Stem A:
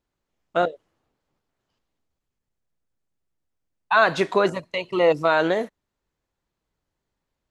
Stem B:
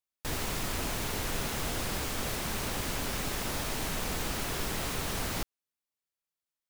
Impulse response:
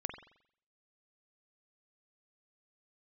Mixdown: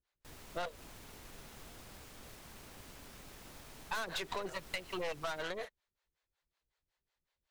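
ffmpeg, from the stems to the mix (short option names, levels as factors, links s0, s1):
-filter_complex "[0:a]equalizer=f=125:t=o:w=1:g=-4,equalizer=f=250:t=o:w=1:g=-10,equalizer=f=2000:t=o:w=1:g=5,equalizer=f=4000:t=o:w=1:g=6,acrossover=split=410[s0][s1];[s0]aeval=exprs='val(0)*(1-1/2+1/2*cos(2*PI*5.4*n/s))':c=same[s2];[s1]aeval=exprs='val(0)*(1-1/2-1/2*cos(2*PI*5.4*n/s))':c=same[s3];[s2][s3]amix=inputs=2:normalize=0,volume=0.944[s4];[1:a]volume=0.141,asplit=2[s5][s6];[s6]volume=0.299,aecho=0:1:227:1[s7];[s4][s5][s7]amix=inputs=3:normalize=0,aeval=exprs='(tanh(22.4*val(0)+0.6)-tanh(0.6))/22.4':c=same,acompressor=threshold=0.0178:ratio=6"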